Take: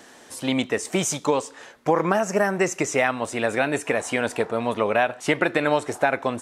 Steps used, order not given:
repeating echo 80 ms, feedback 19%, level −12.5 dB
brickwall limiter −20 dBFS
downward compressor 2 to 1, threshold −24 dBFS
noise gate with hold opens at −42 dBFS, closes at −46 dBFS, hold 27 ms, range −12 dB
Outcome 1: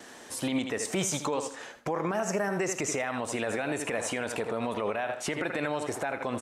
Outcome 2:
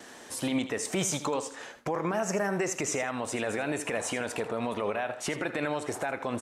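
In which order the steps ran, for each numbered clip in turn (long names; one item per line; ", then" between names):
noise gate with hold, then repeating echo, then downward compressor, then brickwall limiter
downward compressor, then brickwall limiter, then repeating echo, then noise gate with hold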